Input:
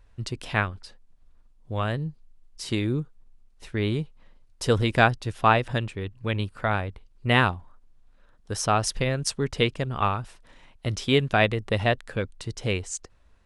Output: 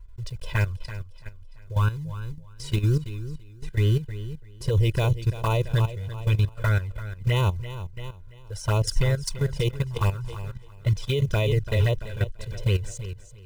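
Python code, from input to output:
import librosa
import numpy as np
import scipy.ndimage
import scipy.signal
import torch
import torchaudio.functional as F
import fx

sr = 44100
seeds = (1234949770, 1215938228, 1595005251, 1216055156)

p1 = fx.block_float(x, sr, bits=5)
p2 = fx.env_flanger(p1, sr, rest_ms=3.0, full_db=-17.5)
p3 = p2 + 0.82 * np.pad(p2, (int(2.0 * sr / 1000.0), 0))[:len(p2)]
p4 = p3 + fx.echo_feedback(p3, sr, ms=338, feedback_pct=40, wet_db=-11.0, dry=0)
p5 = fx.level_steps(p4, sr, step_db=13)
y = fx.low_shelf(p5, sr, hz=190.0, db=10.5)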